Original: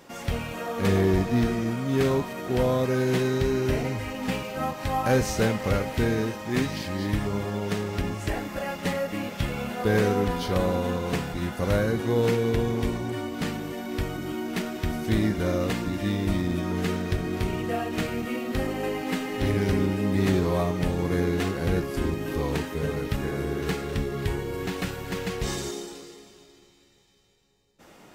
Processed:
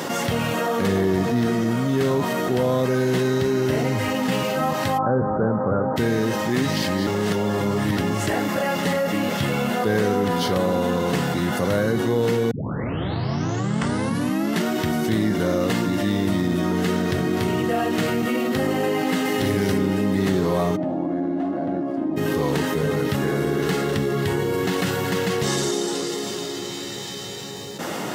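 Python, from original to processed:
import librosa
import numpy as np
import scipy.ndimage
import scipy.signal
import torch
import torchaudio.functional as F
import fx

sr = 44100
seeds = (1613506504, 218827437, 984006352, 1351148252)

y = fx.steep_lowpass(x, sr, hz=1500.0, slope=72, at=(4.97, 5.96), fade=0.02)
y = fx.high_shelf(y, sr, hz=4800.0, db=5.5, at=(19.25, 19.78))
y = fx.double_bandpass(y, sr, hz=440.0, octaves=1.1, at=(20.75, 22.16), fade=0.02)
y = fx.lowpass(y, sr, hz=12000.0, slope=12, at=(25.48, 26.09))
y = fx.edit(y, sr, fx.reverse_span(start_s=7.07, length_s=0.9),
    fx.tape_start(start_s=12.51, length_s=2.16), tone=tone)
y = scipy.signal.sosfilt(scipy.signal.butter(4, 110.0, 'highpass', fs=sr, output='sos'), y)
y = fx.notch(y, sr, hz=2400.0, q=9.5)
y = fx.env_flatten(y, sr, amount_pct=70)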